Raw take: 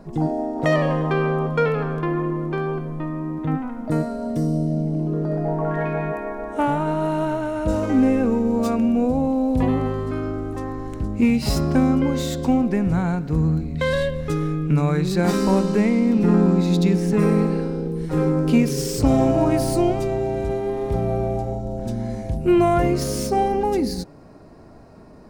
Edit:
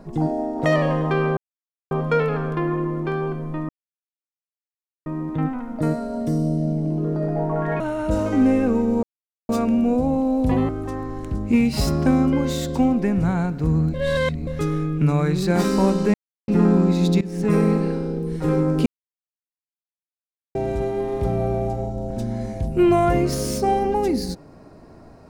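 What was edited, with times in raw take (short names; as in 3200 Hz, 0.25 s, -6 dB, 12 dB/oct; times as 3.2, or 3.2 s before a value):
1.37 insert silence 0.54 s
3.15 insert silence 1.37 s
5.89–7.37 cut
8.6 insert silence 0.46 s
9.8–10.38 cut
13.63–14.16 reverse
15.83–16.17 mute
16.9–17.22 fade in, from -19 dB
18.55–20.24 mute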